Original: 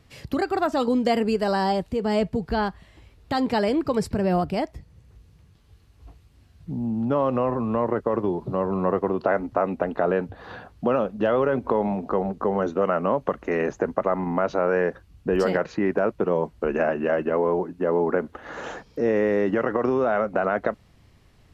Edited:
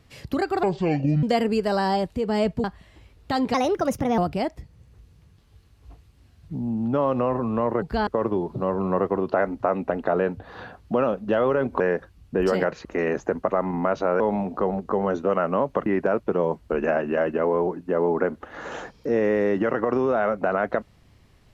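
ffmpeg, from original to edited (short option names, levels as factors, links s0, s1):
-filter_complex "[0:a]asplit=12[s0][s1][s2][s3][s4][s5][s6][s7][s8][s9][s10][s11];[s0]atrim=end=0.634[s12];[s1]atrim=start=0.63:end=0.99,asetpts=PTS-STARTPTS,asetrate=26460,aresample=44100[s13];[s2]atrim=start=0.986:end=2.402[s14];[s3]atrim=start=2.648:end=3.554[s15];[s4]atrim=start=3.55:end=4.35,asetpts=PTS-STARTPTS,asetrate=55125,aresample=44100[s16];[s5]atrim=start=4.346:end=7.992[s17];[s6]atrim=start=2.398:end=2.652[s18];[s7]atrim=start=7.988:end=11.722[s19];[s8]atrim=start=14.728:end=15.782[s20];[s9]atrim=start=13.378:end=14.732[s21];[s10]atrim=start=11.718:end=13.382[s22];[s11]atrim=start=15.778[s23];[s12][s13]acrossfade=d=0.004:c1=hsin:c2=hsin[s24];[s24][s14]acrossfade=d=0.004:c1=hsin:c2=hsin[s25];[s25][s15]acrossfade=d=0.004:c1=hsin:c2=hsin[s26];[s26][s16]acrossfade=d=0.004:c1=hsin:c2=hsin[s27];[s27][s17]acrossfade=d=0.004:c1=hsin:c2=hsin[s28];[s28][s18]acrossfade=d=0.004:c1=hsin:c2=hsin[s29];[s29][s19]acrossfade=d=0.004:c1=hsin:c2=hsin[s30];[s30][s20]acrossfade=d=0.004:c1=hsin:c2=hsin[s31];[s31][s21]acrossfade=d=0.004:c1=hsin:c2=hsin[s32];[s32][s22]acrossfade=d=0.004:c1=hsin:c2=hsin[s33];[s33][s23]acrossfade=d=0.004:c1=hsin:c2=hsin"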